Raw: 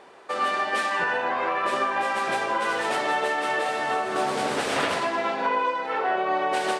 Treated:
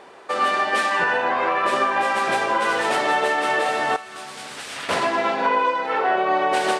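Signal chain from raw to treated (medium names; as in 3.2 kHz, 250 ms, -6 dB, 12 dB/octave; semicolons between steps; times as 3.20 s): 3.96–4.89 s: amplifier tone stack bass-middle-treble 5-5-5; trim +4.5 dB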